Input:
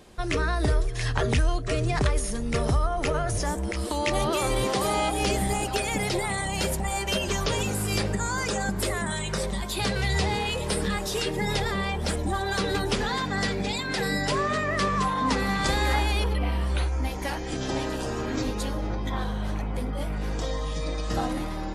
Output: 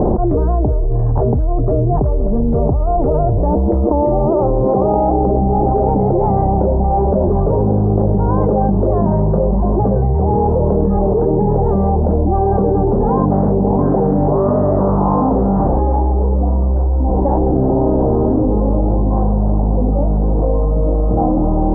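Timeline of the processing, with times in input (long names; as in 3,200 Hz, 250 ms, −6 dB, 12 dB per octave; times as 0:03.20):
0:13.31–0:15.79: highs frequency-modulated by the lows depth 0.49 ms
whole clip: Butterworth low-pass 850 Hz 36 dB per octave; hum removal 162.4 Hz, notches 33; envelope flattener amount 100%; level +5.5 dB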